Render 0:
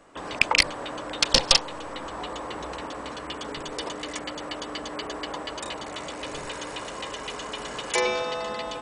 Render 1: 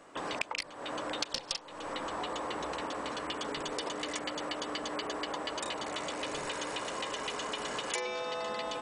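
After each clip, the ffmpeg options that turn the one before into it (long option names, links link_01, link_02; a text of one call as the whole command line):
ffmpeg -i in.wav -af "lowshelf=frequency=99:gain=-11.5,acompressor=threshold=-32dB:ratio=10" out.wav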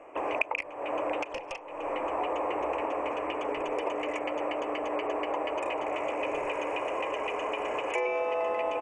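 ffmpeg -i in.wav -af "firequalizer=gain_entry='entry(100,0);entry(190,-11);entry(310,5);entry(620,10);entry(1100,4);entry(1500,-5);entry(2500,9);entry(3800,-28);entry(6200,-12);entry(12000,-16)':delay=0.05:min_phase=1" out.wav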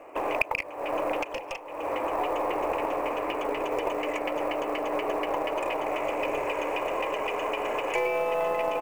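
ffmpeg -i in.wav -af "acrusher=bits=7:mode=log:mix=0:aa=0.000001,aeval=exprs='0.316*(cos(1*acos(clip(val(0)/0.316,-1,1)))-cos(1*PI/2))+0.0126*(cos(6*acos(clip(val(0)/0.316,-1,1)))-cos(6*PI/2))':channel_layout=same,volume=2.5dB" out.wav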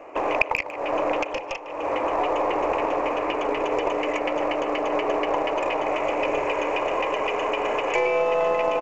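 ffmpeg -i in.wav -filter_complex "[0:a]aresample=16000,aresample=44100,asplit=2[link_01][link_02];[link_02]adelay=150,highpass=300,lowpass=3400,asoftclip=type=hard:threshold=-17.5dB,volume=-13dB[link_03];[link_01][link_03]amix=inputs=2:normalize=0,volume=4.5dB" out.wav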